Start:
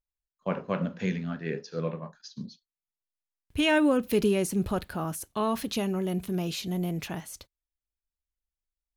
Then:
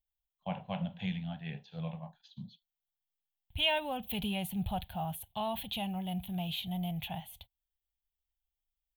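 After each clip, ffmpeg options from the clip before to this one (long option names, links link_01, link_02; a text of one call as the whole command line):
ffmpeg -i in.wav -af "firequalizer=gain_entry='entry(110,0);entry(190,-6);entry(300,-24);entry(430,-23);entry(760,4);entry(1200,-18);entry(3300,5);entry(5200,-26);entry(15000,6)':delay=0.05:min_phase=1" out.wav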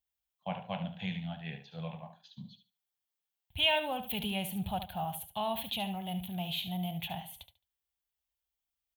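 ffmpeg -i in.wav -af "highpass=52,lowshelf=frequency=300:gain=-5,aecho=1:1:72|144|216:0.299|0.0597|0.0119,volume=2dB" out.wav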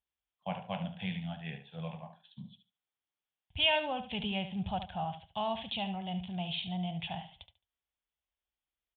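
ffmpeg -i in.wav -af "aresample=8000,aresample=44100" out.wav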